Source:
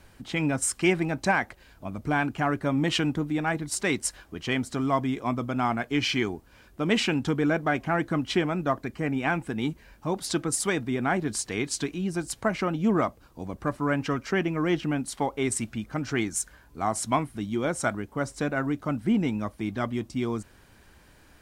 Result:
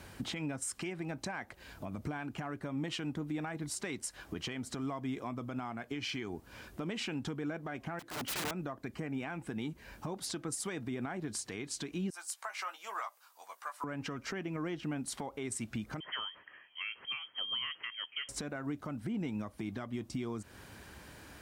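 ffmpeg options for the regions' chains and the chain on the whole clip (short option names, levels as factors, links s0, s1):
-filter_complex "[0:a]asettb=1/sr,asplit=3[s0][s1][s2];[s0]atrim=end=7.994[s3];[s1]atrim=start=7.99:end=8.51,asetpts=PTS-STARTPTS,afade=t=in:d=0.004:c=qsin,afade=t=out:st=0.516:d=0.004:c=qsin,highpass=f=240:p=1,acompressor=threshold=0.0141:ratio=2:attack=3.2:release=140:knee=1:detection=peak,aeval=exprs='(mod(53.1*val(0)+1,2)-1)/53.1':c=same[s4];[s2]atrim=start=8.506[s5];[s3][s4]acrossfade=d=0.004:c1=hsin:c2=qsin[s6];[s6][s5]acrossfade=d=0.004:c1=qsin:c2=hsin,asettb=1/sr,asplit=3[s7][s8][s9];[s7]atrim=end=12.104[s10];[s8]atrim=start=12.1:end=13.84,asetpts=PTS-STARTPTS,afade=t=in:d=0.004:c=qsin,afade=t=out:st=1.736:d=0.004:c=qsin,highpass=f=960:w=0.5412,highpass=f=960:w=1.3066,equalizer=f=2100:w=0.33:g=-8,asplit=2[s11][s12];[s12]adelay=15,volume=0.422[s13];[s11][s13]amix=inputs=2:normalize=0,atrim=end_sample=76734[s14];[s9]atrim=start=13.836[s15];[s10][s14]acrossfade=d=0.004:c1=hsin:c2=qsin[s16];[s16][s15]acrossfade=d=0.004:c1=qsin:c2=hsin,asettb=1/sr,asplit=3[s17][s18][s19];[s17]atrim=end=16.004[s20];[s18]atrim=start=16:end=18.29,asetpts=PTS-STARTPTS,afade=t=in:d=0.004:c=qsin,afade=t=out:st=2.286:d=0.004:c=qsin,highpass=f=200:w=0.5412,highpass=f=200:w=1.3066,equalizer=f=520:w=0.42:g=-10.5,lowpass=f=2900:t=q:w=0.5098,lowpass=f=2900:t=q:w=0.6013,lowpass=f=2900:t=q:w=0.9,lowpass=f=2900:t=q:w=2.563,afreqshift=-3400[s21];[s19]atrim=start=18.286[s22];[s20][s21]acrossfade=d=0.004:c1=hsin:c2=qsin[s23];[s23][s22]acrossfade=d=0.004:c1=qsin:c2=hsin,highpass=63,acompressor=threshold=0.0141:ratio=5,alimiter=level_in=2.82:limit=0.0631:level=0:latency=1:release=144,volume=0.355,volume=1.68"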